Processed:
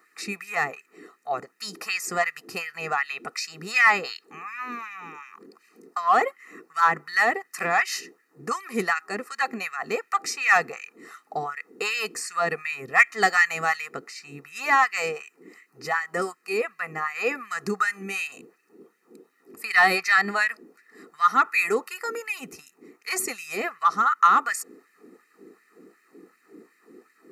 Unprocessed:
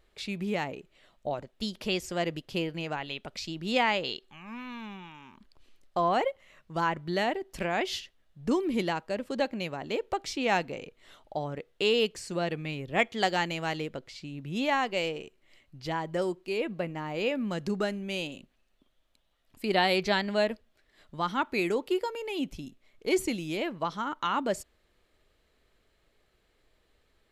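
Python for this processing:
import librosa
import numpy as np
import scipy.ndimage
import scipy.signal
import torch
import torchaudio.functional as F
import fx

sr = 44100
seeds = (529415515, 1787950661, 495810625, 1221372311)

p1 = x + 0.89 * np.pad(x, (int(1.6 * sr / 1000.0), 0))[:len(x)]
p2 = fx.dmg_noise_band(p1, sr, seeds[0], low_hz=170.0, high_hz=490.0, level_db=-54.0)
p3 = fx.fixed_phaser(p2, sr, hz=1400.0, stages=4)
p4 = fx.filter_lfo_highpass(p3, sr, shape='sine', hz=2.7, low_hz=330.0, high_hz=2000.0, q=1.7)
p5 = np.clip(p4, -10.0 ** (-27.5 / 20.0), 10.0 ** (-27.5 / 20.0))
p6 = p4 + (p5 * librosa.db_to_amplitude(-9.5))
y = p6 * librosa.db_to_amplitude(7.5)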